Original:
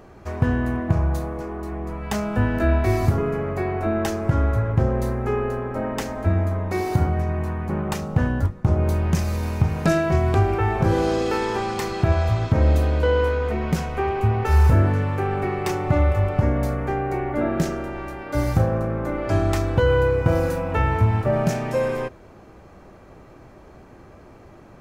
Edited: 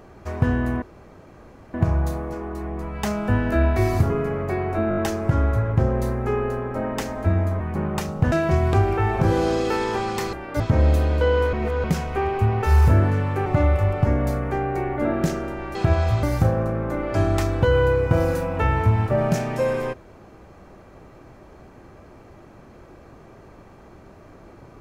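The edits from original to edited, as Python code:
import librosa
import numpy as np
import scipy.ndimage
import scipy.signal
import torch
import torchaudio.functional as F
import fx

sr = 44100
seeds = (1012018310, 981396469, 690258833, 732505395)

y = fx.edit(x, sr, fx.insert_room_tone(at_s=0.82, length_s=0.92),
    fx.stutter(start_s=3.97, slice_s=0.02, count=5),
    fx.cut(start_s=6.6, length_s=0.94),
    fx.cut(start_s=8.26, length_s=1.67),
    fx.swap(start_s=11.94, length_s=0.48, other_s=18.11, other_length_s=0.27),
    fx.reverse_span(start_s=13.35, length_s=0.31),
    fx.cut(start_s=15.28, length_s=0.54), tone=tone)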